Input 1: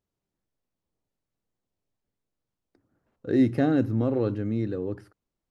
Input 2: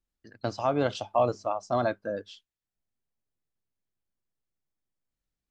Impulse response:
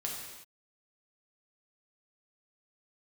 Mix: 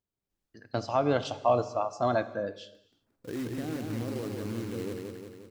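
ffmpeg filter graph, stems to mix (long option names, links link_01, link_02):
-filter_complex "[0:a]alimiter=limit=-22.5dB:level=0:latency=1:release=62,acrusher=bits=3:mode=log:mix=0:aa=0.000001,volume=-6dB,asplit=2[link_01][link_02];[link_02]volume=-3.5dB[link_03];[1:a]adelay=300,volume=-2dB,asplit=2[link_04][link_05];[link_05]volume=-11dB[link_06];[2:a]atrim=start_sample=2205[link_07];[link_06][link_07]afir=irnorm=-1:irlink=0[link_08];[link_03]aecho=0:1:177|354|531|708|885|1062|1239|1416|1593:1|0.57|0.325|0.185|0.106|0.0602|0.0343|0.0195|0.0111[link_09];[link_01][link_04][link_08][link_09]amix=inputs=4:normalize=0"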